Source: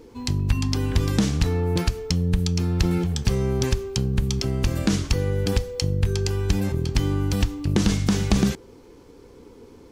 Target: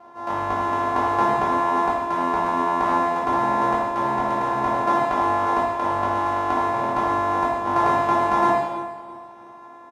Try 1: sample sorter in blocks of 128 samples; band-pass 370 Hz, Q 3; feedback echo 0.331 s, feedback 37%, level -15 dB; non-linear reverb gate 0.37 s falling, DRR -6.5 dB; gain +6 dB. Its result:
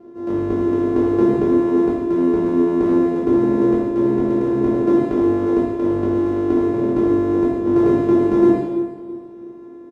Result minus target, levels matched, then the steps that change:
1000 Hz band -16.5 dB
change: band-pass 850 Hz, Q 3

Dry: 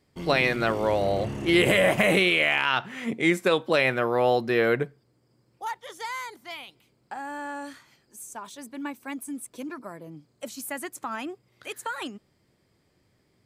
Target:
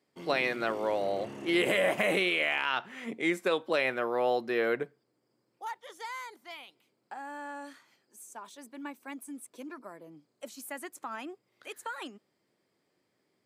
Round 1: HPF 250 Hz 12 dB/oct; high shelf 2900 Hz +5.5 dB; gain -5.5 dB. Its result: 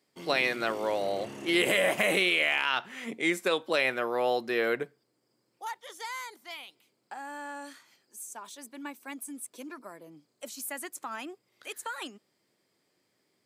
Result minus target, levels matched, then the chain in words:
8000 Hz band +5.5 dB
HPF 250 Hz 12 dB/oct; high shelf 2900 Hz -2.5 dB; gain -5.5 dB

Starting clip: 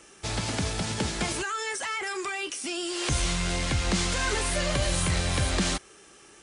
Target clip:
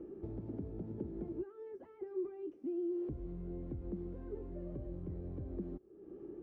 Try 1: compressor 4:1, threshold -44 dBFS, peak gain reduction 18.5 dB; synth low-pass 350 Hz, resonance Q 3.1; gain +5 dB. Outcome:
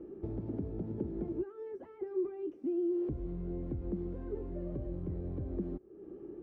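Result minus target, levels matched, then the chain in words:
compressor: peak gain reduction -5 dB
compressor 4:1, threshold -50.5 dBFS, peak gain reduction 23.5 dB; synth low-pass 350 Hz, resonance Q 3.1; gain +5 dB

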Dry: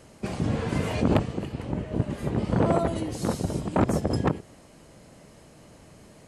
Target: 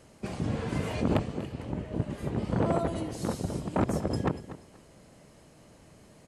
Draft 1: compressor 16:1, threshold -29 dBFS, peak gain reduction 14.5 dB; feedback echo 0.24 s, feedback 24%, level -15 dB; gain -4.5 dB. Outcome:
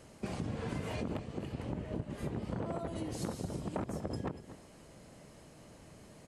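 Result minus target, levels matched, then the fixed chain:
compressor: peak gain reduction +14.5 dB
feedback echo 0.24 s, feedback 24%, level -15 dB; gain -4.5 dB

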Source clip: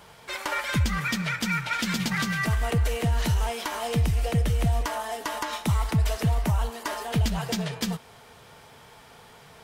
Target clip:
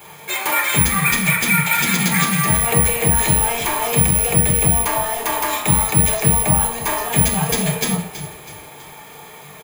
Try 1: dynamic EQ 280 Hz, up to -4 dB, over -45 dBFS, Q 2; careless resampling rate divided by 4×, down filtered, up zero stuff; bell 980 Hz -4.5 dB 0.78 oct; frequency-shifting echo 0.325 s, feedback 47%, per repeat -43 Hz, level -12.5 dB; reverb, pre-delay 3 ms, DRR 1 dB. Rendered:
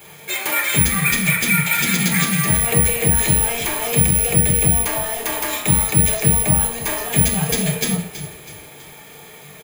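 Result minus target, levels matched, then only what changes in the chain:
1000 Hz band -5.5 dB
change: bell 980 Hz +4 dB 0.78 oct

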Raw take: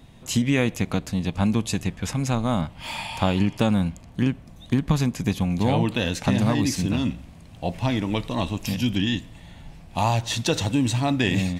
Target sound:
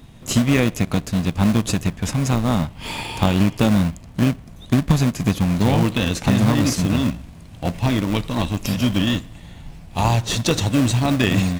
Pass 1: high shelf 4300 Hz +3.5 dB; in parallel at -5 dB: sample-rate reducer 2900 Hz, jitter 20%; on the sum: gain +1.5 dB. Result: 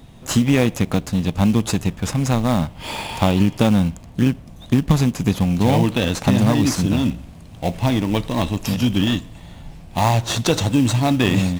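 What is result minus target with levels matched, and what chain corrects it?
sample-rate reducer: distortion -8 dB
high shelf 4300 Hz +3.5 dB; in parallel at -5 dB: sample-rate reducer 860 Hz, jitter 20%; on the sum: gain +1.5 dB

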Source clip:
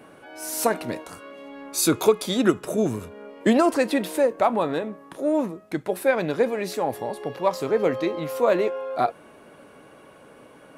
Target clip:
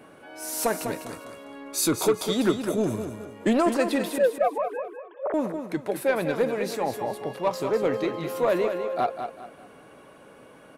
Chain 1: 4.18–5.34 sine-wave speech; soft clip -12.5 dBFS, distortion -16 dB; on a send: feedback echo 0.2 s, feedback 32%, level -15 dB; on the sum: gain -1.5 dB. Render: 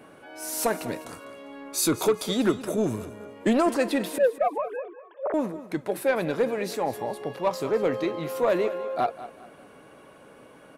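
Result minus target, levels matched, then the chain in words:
echo-to-direct -7 dB
4.18–5.34 sine-wave speech; soft clip -12.5 dBFS, distortion -16 dB; on a send: feedback echo 0.2 s, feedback 32%, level -8 dB; on the sum: gain -1.5 dB

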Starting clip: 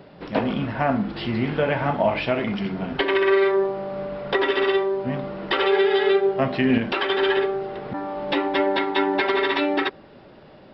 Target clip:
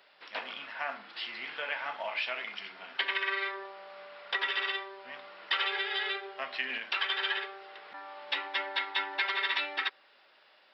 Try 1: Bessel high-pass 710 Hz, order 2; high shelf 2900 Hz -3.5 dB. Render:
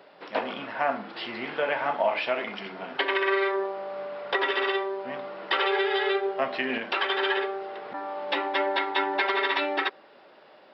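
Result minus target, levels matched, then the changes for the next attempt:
1000 Hz band +4.5 dB
change: Bessel high-pass 2200 Hz, order 2

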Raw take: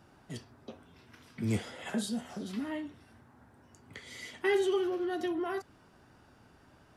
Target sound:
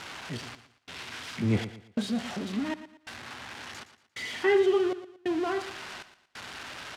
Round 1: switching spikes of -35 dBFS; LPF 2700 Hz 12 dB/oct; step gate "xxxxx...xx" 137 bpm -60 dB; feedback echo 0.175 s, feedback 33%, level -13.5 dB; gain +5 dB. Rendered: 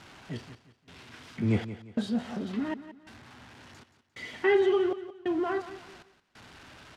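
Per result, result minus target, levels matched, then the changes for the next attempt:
echo 59 ms late; switching spikes: distortion -11 dB
change: feedback echo 0.116 s, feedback 33%, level -13.5 dB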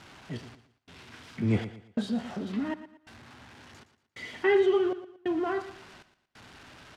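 switching spikes: distortion -11 dB
change: switching spikes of -23.5 dBFS

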